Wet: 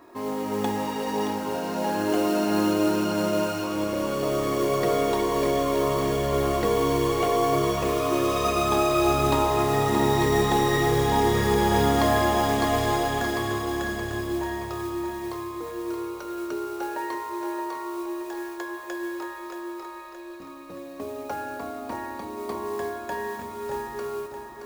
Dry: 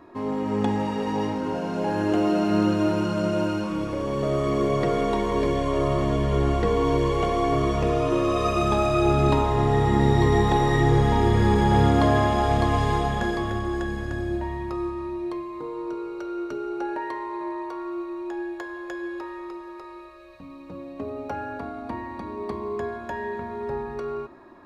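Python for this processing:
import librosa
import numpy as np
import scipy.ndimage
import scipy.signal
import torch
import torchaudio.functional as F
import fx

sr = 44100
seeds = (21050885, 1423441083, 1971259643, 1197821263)

p1 = fx.bass_treble(x, sr, bass_db=-8, treble_db=6)
p2 = fx.mod_noise(p1, sr, seeds[0], snr_db=19)
y = p2 + fx.echo_feedback(p2, sr, ms=624, feedback_pct=50, wet_db=-8.0, dry=0)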